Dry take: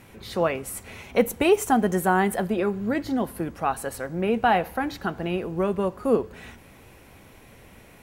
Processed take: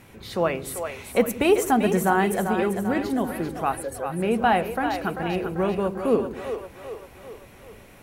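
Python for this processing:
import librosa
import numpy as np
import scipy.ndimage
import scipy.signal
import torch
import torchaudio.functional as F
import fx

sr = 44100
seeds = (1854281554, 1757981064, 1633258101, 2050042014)

y = fx.spec_expand(x, sr, power=1.9, at=(3.75, 4.2))
y = fx.echo_split(y, sr, split_hz=380.0, low_ms=83, high_ms=392, feedback_pct=52, wet_db=-7.5)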